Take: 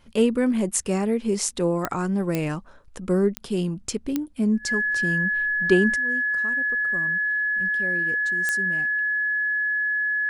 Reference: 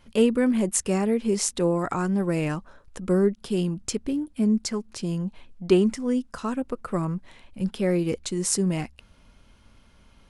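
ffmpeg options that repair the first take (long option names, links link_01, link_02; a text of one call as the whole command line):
ffmpeg -i in.wav -af "adeclick=threshold=4,bandreject=frequency=1700:width=30,asetnsamples=nb_out_samples=441:pad=0,asendcmd='5.96 volume volume 11.5dB',volume=0dB" out.wav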